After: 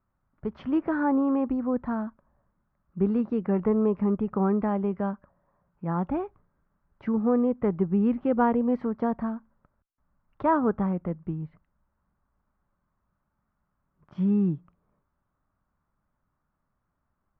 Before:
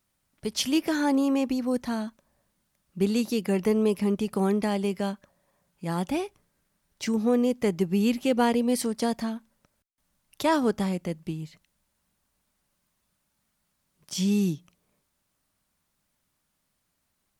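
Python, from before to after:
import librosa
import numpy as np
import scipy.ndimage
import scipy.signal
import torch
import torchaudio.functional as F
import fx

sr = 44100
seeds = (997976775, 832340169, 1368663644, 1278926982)

y = fx.ladder_lowpass(x, sr, hz=1500.0, resonance_pct=45)
y = fx.low_shelf(y, sr, hz=150.0, db=10.0)
y = y * librosa.db_to_amplitude(6.0)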